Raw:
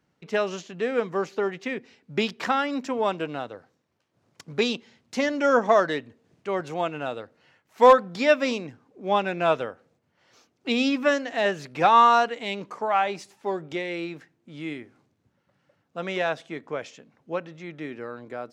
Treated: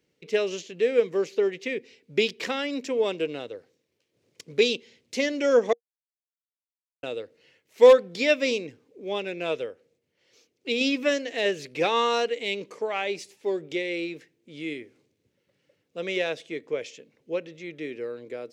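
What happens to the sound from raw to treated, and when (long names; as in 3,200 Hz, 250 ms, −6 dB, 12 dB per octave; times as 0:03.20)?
0:05.73–0:07.03: silence
0:09.04–0:10.81: clip gain −3.5 dB
whole clip: drawn EQ curve 220 Hz 0 dB, 470 Hz +11 dB, 730 Hz −5 dB, 1,400 Hz −5 dB, 2,200 Hz +8 dB; level −5.5 dB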